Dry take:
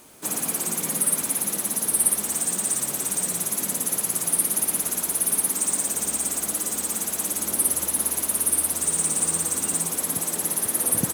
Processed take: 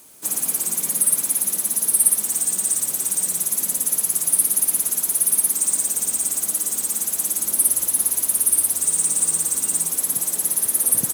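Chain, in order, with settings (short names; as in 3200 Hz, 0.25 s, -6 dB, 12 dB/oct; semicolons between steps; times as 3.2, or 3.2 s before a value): high shelf 4600 Hz +11.5 dB; gain -5.5 dB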